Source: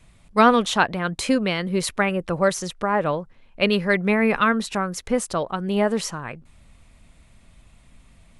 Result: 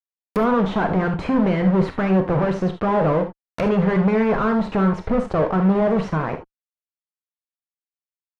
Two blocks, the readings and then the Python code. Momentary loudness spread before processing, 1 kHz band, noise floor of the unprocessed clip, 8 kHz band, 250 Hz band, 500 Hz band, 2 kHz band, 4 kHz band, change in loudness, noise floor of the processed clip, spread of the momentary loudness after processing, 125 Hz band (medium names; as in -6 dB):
9 LU, -1.0 dB, -54 dBFS, under -20 dB, +4.5 dB, +2.5 dB, -5.0 dB, -11.5 dB, +1.5 dB, under -85 dBFS, 6 LU, +8.5 dB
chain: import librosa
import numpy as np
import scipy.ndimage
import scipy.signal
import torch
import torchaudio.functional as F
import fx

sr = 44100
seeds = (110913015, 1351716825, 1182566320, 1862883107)

y = fx.quant_dither(x, sr, seeds[0], bits=10, dither='triangular')
y = fx.fuzz(y, sr, gain_db=43.0, gate_db=-35.0)
y = fx.env_lowpass_down(y, sr, base_hz=1100.0, full_db=-18.5)
y = fx.rev_gated(y, sr, seeds[1], gate_ms=100, shape='flat', drr_db=5.5)
y = y * librosa.db_to_amplitude(-3.0)